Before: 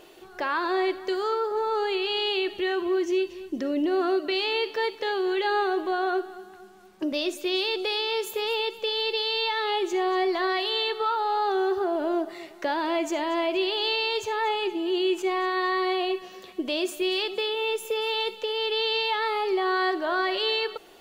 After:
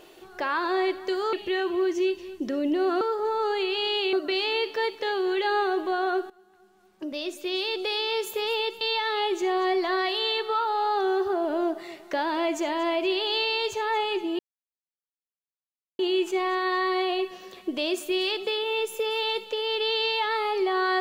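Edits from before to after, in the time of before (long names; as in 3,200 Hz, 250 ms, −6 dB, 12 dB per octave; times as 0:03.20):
0:01.33–0:02.45: move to 0:04.13
0:06.30–0:08.06: fade in, from −17.5 dB
0:08.81–0:09.32: remove
0:14.90: splice in silence 1.60 s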